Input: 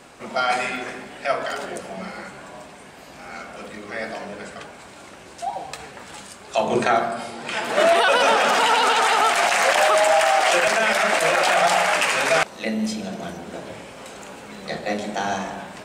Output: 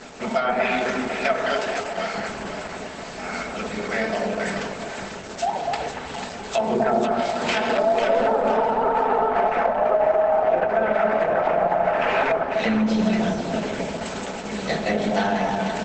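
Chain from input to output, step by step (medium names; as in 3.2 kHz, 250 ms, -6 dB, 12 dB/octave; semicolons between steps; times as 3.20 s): CVSD coder 64 kbps; band-stop 1.1 kHz, Q 15; low-pass that closes with the level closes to 700 Hz, closed at -14.5 dBFS; 1.59–2.14 s: peaking EQ 120 Hz -14.5 dB 2.7 oct; 12.35–13.03 s: high-pass 60 Hz 6 dB/octave; comb 4.6 ms, depth 47%; compression 5:1, threshold -25 dBFS, peak gain reduction 10.5 dB; 5.67–6.42 s: distance through air 77 m; echo whose repeats swap between lows and highs 247 ms, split 1 kHz, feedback 62%, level -3 dB; trim +6.5 dB; Opus 12 kbps 48 kHz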